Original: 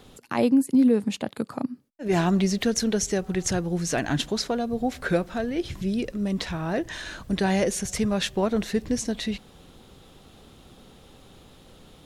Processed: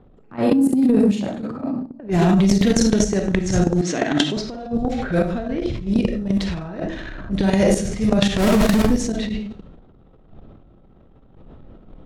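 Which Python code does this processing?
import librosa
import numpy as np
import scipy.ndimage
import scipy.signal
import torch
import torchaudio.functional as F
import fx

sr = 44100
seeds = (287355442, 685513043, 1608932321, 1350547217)

y = fx.halfwave_hold(x, sr, at=(8.35, 8.87))
y = fx.low_shelf(y, sr, hz=310.0, db=10.5)
y = fx.rev_freeverb(y, sr, rt60_s=0.51, hf_ratio=0.5, predelay_ms=5, drr_db=0.0)
y = fx.env_lowpass(y, sr, base_hz=1200.0, full_db=-11.5)
y = fx.cabinet(y, sr, low_hz=220.0, low_slope=12, high_hz=8600.0, hz=(300.0, 2000.0, 3400.0), db=(6, 6, 5), at=(3.81, 4.37))
y = fx.echo_wet_highpass(y, sr, ms=102, feedback_pct=35, hz=4500.0, wet_db=-12.5)
y = fx.level_steps(y, sr, step_db=18)
y = fx.transient(y, sr, attack_db=-10, sustain_db=9)
y = y * 10.0 ** (4.0 / 20.0)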